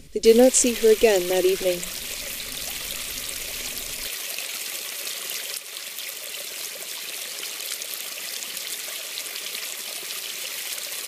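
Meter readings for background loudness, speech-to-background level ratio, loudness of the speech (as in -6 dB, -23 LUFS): -29.5 LUFS, 11.0 dB, -18.5 LUFS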